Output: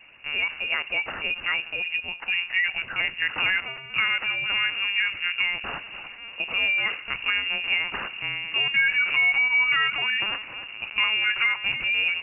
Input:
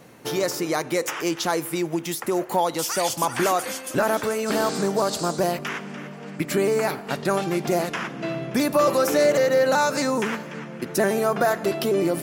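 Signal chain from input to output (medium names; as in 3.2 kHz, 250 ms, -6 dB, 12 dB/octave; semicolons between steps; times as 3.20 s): hum notches 50/100/150/200/250/300/350/400 Hz; LPC vocoder at 8 kHz pitch kept; frequency inversion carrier 2.8 kHz; trim -2.5 dB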